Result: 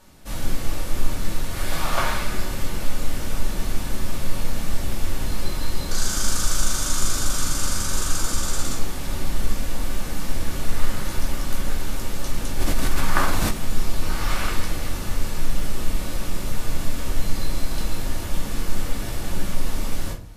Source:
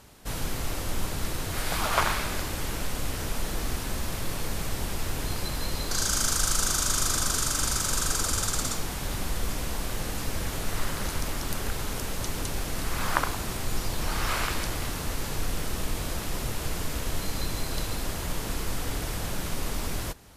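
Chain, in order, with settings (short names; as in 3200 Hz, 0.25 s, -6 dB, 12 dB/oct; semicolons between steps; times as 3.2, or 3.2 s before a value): shoebox room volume 220 m³, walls furnished, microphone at 2.5 m; 12.59–13.51 fast leveller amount 50%; gain -4 dB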